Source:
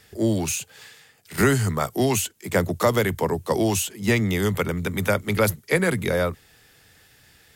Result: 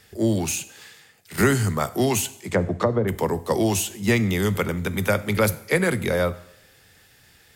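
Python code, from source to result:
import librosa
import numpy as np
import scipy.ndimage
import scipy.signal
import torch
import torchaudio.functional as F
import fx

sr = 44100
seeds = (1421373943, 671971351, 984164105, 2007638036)

y = fx.env_lowpass_down(x, sr, base_hz=530.0, full_db=-15.0, at=(2.34, 3.07), fade=0.02)
y = fx.rev_double_slope(y, sr, seeds[0], early_s=0.71, late_s=2.0, knee_db=-25, drr_db=13.5)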